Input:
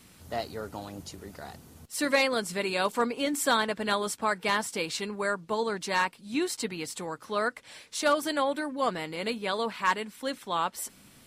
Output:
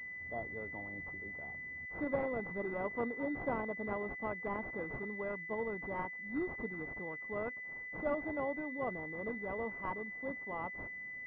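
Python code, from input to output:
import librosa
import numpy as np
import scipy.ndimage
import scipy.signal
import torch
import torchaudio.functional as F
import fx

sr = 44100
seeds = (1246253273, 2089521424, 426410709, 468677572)

y = np.repeat(scipy.signal.resample_poly(x, 1, 2), 2)[:len(x)]
y = fx.pwm(y, sr, carrier_hz=2000.0)
y = y * 10.0 ** (-8.0 / 20.0)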